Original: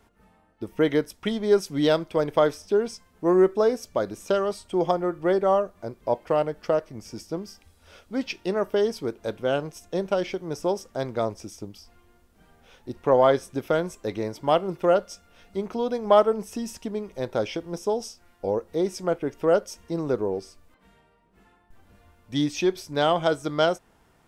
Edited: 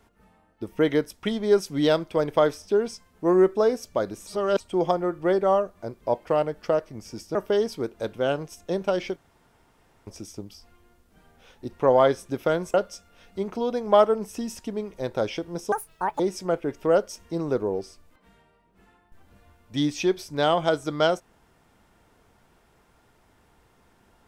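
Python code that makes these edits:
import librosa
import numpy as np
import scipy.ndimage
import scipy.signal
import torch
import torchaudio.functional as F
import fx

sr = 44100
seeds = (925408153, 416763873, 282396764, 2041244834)

y = fx.edit(x, sr, fx.reverse_span(start_s=4.27, length_s=0.33),
    fx.cut(start_s=7.35, length_s=1.24),
    fx.room_tone_fill(start_s=10.4, length_s=0.91),
    fx.cut(start_s=13.98, length_s=0.94),
    fx.speed_span(start_s=17.9, length_s=0.88, speed=1.85), tone=tone)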